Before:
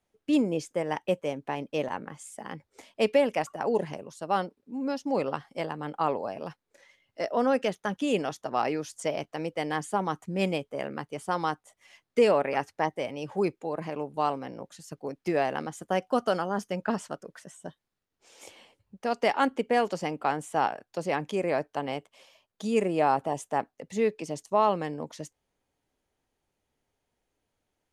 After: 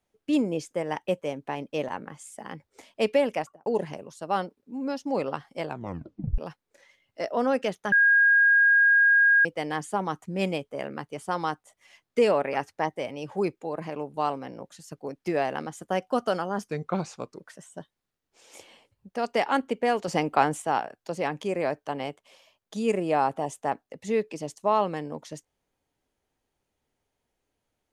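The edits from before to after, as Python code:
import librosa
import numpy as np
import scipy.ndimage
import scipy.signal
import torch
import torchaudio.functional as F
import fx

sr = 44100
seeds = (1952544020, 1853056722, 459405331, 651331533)

y = fx.studio_fade_out(x, sr, start_s=3.33, length_s=0.33)
y = fx.edit(y, sr, fx.tape_stop(start_s=5.64, length_s=0.74),
    fx.bleep(start_s=7.92, length_s=1.53, hz=1630.0, db=-15.5),
    fx.speed_span(start_s=16.68, length_s=0.59, speed=0.83),
    fx.clip_gain(start_s=19.96, length_s=0.54, db=6.0), tone=tone)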